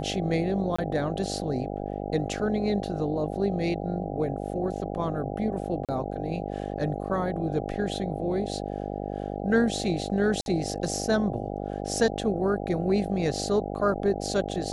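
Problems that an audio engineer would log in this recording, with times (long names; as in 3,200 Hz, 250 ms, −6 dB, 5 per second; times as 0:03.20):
mains buzz 50 Hz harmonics 16 −33 dBFS
0:00.76–0:00.79: drop-out 25 ms
0:05.85–0:05.89: drop-out 37 ms
0:10.41–0:10.46: drop-out 51 ms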